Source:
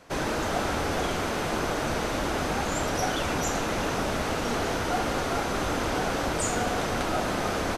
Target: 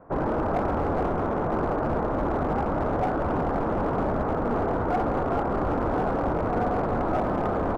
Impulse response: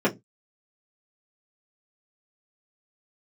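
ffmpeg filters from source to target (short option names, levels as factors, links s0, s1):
-filter_complex "[0:a]lowpass=f=1200:w=0.5412,lowpass=f=1200:w=1.3066,asplit=2[s0][s1];[s1]aeval=exprs='0.0596*(abs(mod(val(0)/0.0596+3,4)-2)-1)':c=same,volume=0.596[s2];[s0][s2]amix=inputs=2:normalize=0"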